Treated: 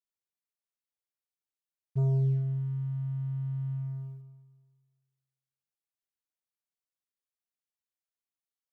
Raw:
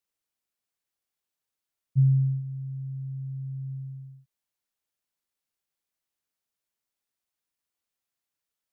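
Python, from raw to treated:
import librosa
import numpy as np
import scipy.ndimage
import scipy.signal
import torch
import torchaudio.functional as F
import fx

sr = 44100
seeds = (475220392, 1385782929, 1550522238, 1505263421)

y = fx.leveller(x, sr, passes=2)
y = fx.rev_schroeder(y, sr, rt60_s=1.5, comb_ms=29, drr_db=9.0)
y = y * librosa.db_to_amplitude(-8.5)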